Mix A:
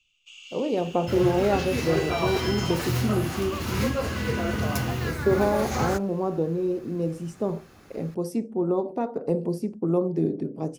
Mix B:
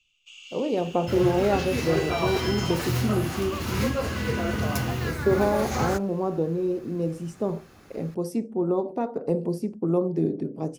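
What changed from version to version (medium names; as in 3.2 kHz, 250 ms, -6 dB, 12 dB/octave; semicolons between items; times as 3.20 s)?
no change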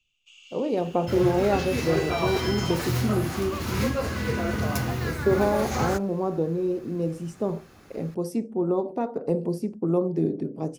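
first sound -5.5 dB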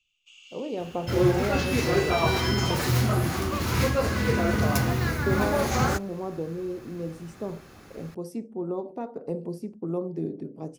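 speech -6.5 dB; second sound +3.0 dB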